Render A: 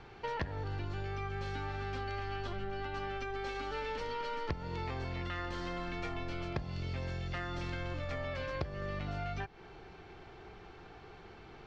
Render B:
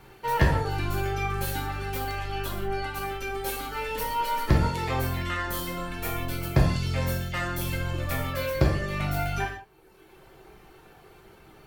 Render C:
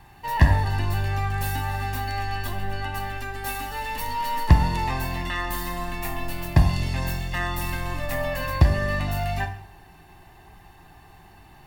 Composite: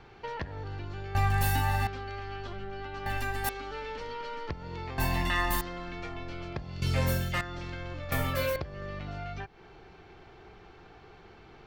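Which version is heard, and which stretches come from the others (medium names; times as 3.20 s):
A
1.15–1.87 s: from C
3.06–3.49 s: from C
4.98–5.61 s: from C
6.82–7.41 s: from B
8.12–8.56 s: from B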